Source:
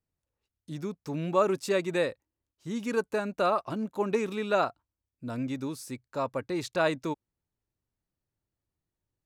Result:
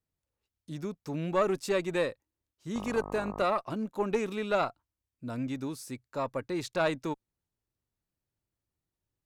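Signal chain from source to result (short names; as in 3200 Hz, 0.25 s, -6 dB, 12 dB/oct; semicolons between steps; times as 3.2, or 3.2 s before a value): 2.74–3.43 buzz 50 Hz, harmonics 25, -40 dBFS -1 dB/oct; tube stage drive 15 dB, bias 0.4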